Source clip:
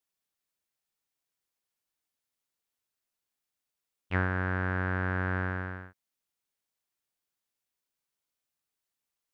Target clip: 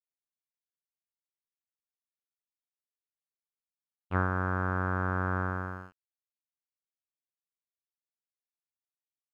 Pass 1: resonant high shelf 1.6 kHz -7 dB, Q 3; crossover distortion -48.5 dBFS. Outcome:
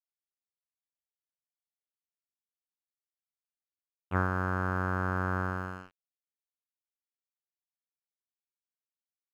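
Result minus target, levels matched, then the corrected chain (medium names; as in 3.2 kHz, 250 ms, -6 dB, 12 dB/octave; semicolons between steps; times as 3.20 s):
crossover distortion: distortion +11 dB
resonant high shelf 1.6 kHz -7 dB, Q 3; crossover distortion -59.5 dBFS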